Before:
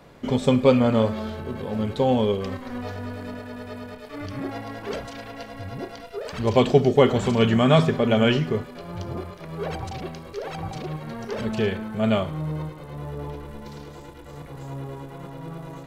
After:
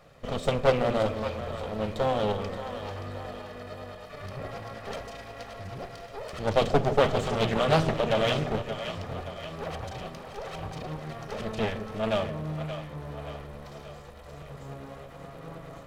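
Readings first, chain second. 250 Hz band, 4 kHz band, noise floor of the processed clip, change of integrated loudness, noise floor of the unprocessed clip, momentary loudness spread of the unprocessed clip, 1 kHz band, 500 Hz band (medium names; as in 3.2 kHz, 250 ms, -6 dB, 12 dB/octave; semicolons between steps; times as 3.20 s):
-10.5 dB, -3.5 dB, -45 dBFS, -6.0 dB, -42 dBFS, 20 LU, -2.0 dB, -5.0 dB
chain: comb filter that takes the minimum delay 1.6 ms; two-band feedback delay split 550 Hz, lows 163 ms, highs 575 ms, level -9 dB; loudspeaker Doppler distortion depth 0.5 ms; trim -4 dB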